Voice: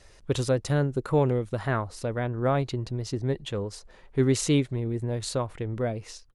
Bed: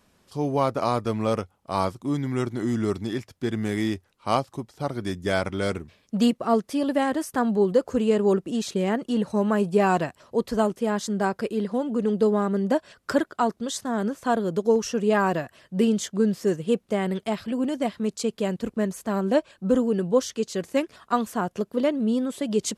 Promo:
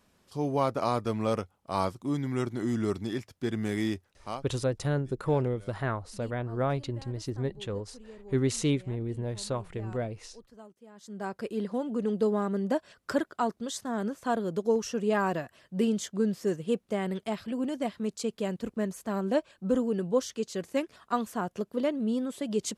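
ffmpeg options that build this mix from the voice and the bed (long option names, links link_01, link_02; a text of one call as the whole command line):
ffmpeg -i stem1.wav -i stem2.wav -filter_complex "[0:a]adelay=4150,volume=-4dB[link_01];[1:a]volume=18dB,afade=type=out:start_time=4.04:duration=0.41:silence=0.0668344,afade=type=in:start_time=10.95:duration=0.64:silence=0.0794328[link_02];[link_01][link_02]amix=inputs=2:normalize=0" out.wav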